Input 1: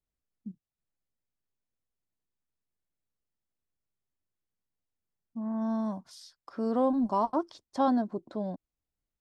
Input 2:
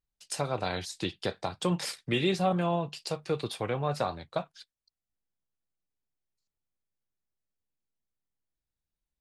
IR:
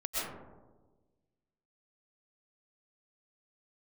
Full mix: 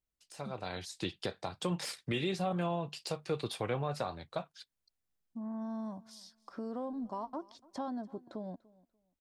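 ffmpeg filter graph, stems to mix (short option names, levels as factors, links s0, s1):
-filter_complex "[0:a]acompressor=threshold=0.0158:ratio=3,volume=0.708,asplit=2[s0][s1];[s1]volume=0.0708[s2];[1:a]deesser=0.7,dynaudnorm=f=200:g=9:m=3.76,volume=0.237[s3];[s2]aecho=0:1:292|584|876:1|0.21|0.0441[s4];[s0][s3][s4]amix=inputs=3:normalize=0,alimiter=limit=0.0668:level=0:latency=1:release=280"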